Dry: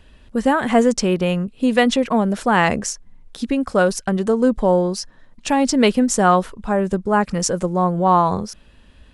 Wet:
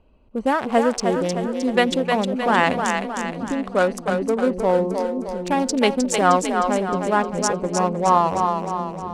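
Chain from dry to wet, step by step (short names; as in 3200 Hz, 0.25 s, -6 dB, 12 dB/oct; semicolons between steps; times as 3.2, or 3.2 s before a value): Wiener smoothing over 25 samples; low shelf 270 Hz -10 dB; split-band echo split 380 Hz, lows 0.705 s, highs 0.309 s, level -5 dB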